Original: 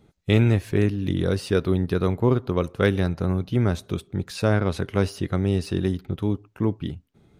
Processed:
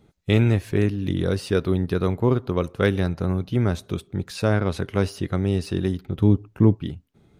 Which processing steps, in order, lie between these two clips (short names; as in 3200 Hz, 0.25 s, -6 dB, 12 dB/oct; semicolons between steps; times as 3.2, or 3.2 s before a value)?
6.16–6.75 low shelf 380 Hz +9.5 dB